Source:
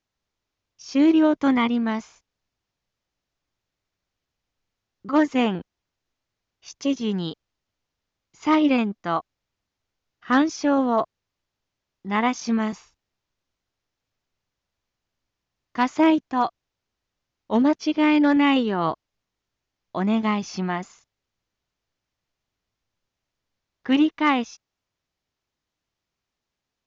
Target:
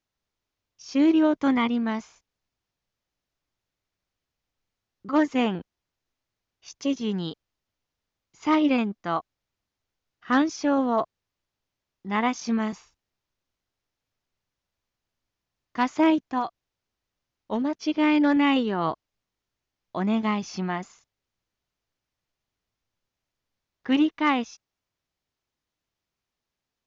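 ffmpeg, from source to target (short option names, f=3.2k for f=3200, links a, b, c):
-filter_complex "[0:a]asettb=1/sr,asplit=3[a][b][c];[a]atrim=end=16.384[d];[b]atrim=start=16.38:end=17.88,asetpts=PTS-STARTPTS,afade=t=in:d=0.004:c=qsin,afade=t=out:st=1.496:d=0.004:c=qsin,acompressor=threshold=-21dB:ratio=6[e];[c]atrim=start=17.876[f];[d][e]acrossfade=d=0.004:c1=hsin:c2=qsin[g];[g][f]acrossfade=d=0.004:c1=qsin:c2=hsin,volume=-2.5dB"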